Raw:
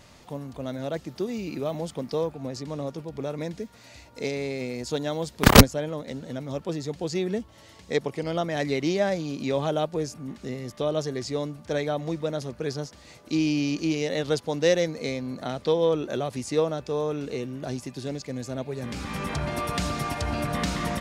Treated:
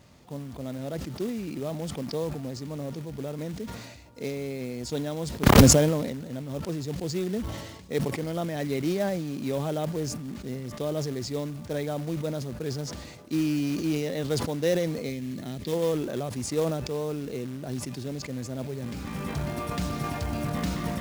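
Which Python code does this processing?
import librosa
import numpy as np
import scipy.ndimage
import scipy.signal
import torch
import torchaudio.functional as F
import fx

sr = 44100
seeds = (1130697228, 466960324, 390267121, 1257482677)

y = fx.highpass(x, sr, hz=91.0, slope=6)
y = fx.low_shelf(y, sr, hz=370.0, db=10.0)
y = fx.quant_float(y, sr, bits=2)
y = fx.spec_box(y, sr, start_s=15.1, length_s=0.62, low_hz=410.0, high_hz=1600.0, gain_db=-8)
y = fx.sustainer(y, sr, db_per_s=43.0)
y = y * 10.0 ** (-7.5 / 20.0)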